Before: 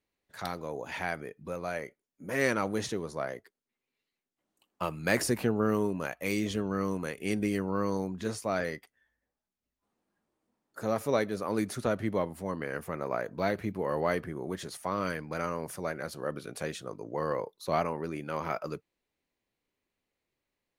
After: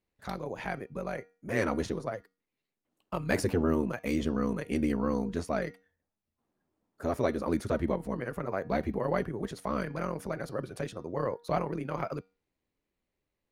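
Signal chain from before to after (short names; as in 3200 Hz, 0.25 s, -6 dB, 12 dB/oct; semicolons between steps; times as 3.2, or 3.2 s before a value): tilt -1.5 dB/oct; de-hum 238.4 Hz, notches 26; granular stretch 0.65×, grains 23 ms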